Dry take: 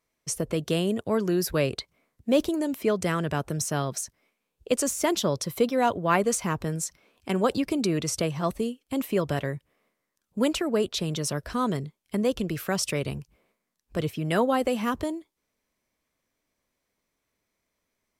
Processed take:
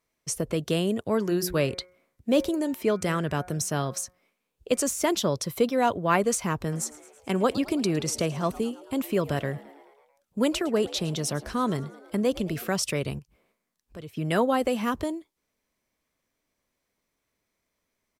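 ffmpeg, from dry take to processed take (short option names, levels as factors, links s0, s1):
-filter_complex "[0:a]asplit=3[s0][s1][s2];[s0]afade=t=out:st=1.2:d=0.02[s3];[s1]bandreject=f=180.9:t=h:w=4,bandreject=f=361.8:t=h:w=4,bandreject=f=542.7:t=h:w=4,bandreject=f=723.6:t=h:w=4,bandreject=f=904.5:t=h:w=4,bandreject=f=1085.4:t=h:w=4,bandreject=f=1266.3:t=h:w=4,bandreject=f=1447.2:t=h:w=4,bandreject=f=1628.1:t=h:w=4,bandreject=f=1809:t=h:w=4,bandreject=f=1989.9:t=h:w=4,bandreject=f=2170.8:t=h:w=4,bandreject=f=2351.7:t=h:w=4,afade=t=in:st=1.2:d=0.02,afade=t=out:st=4.79:d=0.02[s4];[s2]afade=t=in:st=4.79:d=0.02[s5];[s3][s4][s5]amix=inputs=3:normalize=0,asplit=3[s6][s7][s8];[s6]afade=t=out:st=6.71:d=0.02[s9];[s7]asplit=7[s10][s11][s12][s13][s14][s15][s16];[s11]adelay=109,afreqshift=70,volume=0.106[s17];[s12]adelay=218,afreqshift=140,volume=0.0676[s18];[s13]adelay=327,afreqshift=210,volume=0.0432[s19];[s14]adelay=436,afreqshift=280,volume=0.0279[s20];[s15]adelay=545,afreqshift=350,volume=0.0178[s21];[s16]adelay=654,afreqshift=420,volume=0.0114[s22];[s10][s17][s18][s19][s20][s21][s22]amix=inputs=7:normalize=0,afade=t=in:st=6.71:d=0.02,afade=t=out:st=12.69:d=0.02[s23];[s8]afade=t=in:st=12.69:d=0.02[s24];[s9][s23][s24]amix=inputs=3:normalize=0,asettb=1/sr,asplit=3[s25][s26][s27];[s25]atrim=end=13.194[s28];[s26]atrim=start=13.19:end=14.17,asetpts=PTS-STARTPTS,afade=t=in:d=0.004:c=qsin,afade=t=out:st=0.976:d=0.004:c=qsin,acompressor=threshold=0.00112:ratio=1.5:attack=3.2:release=140:knee=1:detection=peak[s29];[s27]atrim=start=14.166[s30];[s28][s29]acrossfade=d=0.004:c1=hsin:c2=qsin[s31];[s31][s30]acrossfade=d=0.004:c1=qsin:c2=hsin"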